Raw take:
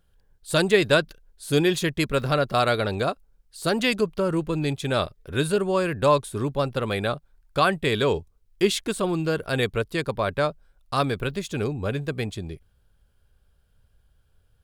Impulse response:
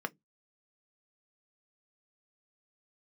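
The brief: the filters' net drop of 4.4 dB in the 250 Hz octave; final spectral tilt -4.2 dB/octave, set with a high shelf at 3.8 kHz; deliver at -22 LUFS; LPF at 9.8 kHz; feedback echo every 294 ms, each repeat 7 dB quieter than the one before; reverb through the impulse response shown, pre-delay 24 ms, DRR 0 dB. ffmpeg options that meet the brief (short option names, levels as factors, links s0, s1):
-filter_complex "[0:a]lowpass=9800,equalizer=f=250:t=o:g=-7,highshelf=f=3800:g=6.5,aecho=1:1:294|588|882|1176|1470:0.447|0.201|0.0905|0.0407|0.0183,asplit=2[s0][s1];[1:a]atrim=start_sample=2205,adelay=24[s2];[s1][s2]afir=irnorm=-1:irlink=0,volume=0.668[s3];[s0][s3]amix=inputs=2:normalize=0,volume=0.944"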